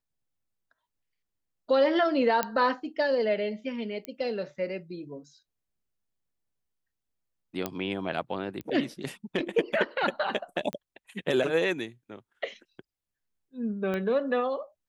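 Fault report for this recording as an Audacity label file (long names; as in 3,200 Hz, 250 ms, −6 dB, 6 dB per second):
2.430000	2.430000	click −10 dBFS
4.050000	4.050000	click −20 dBFS
7.660000	7.660000	click −14 dBFS
8.610000	8.610000	click −25 dBFS
10.730000	10.730000	click −18 dBFS
13.940000	13.940000	click −20 dBFS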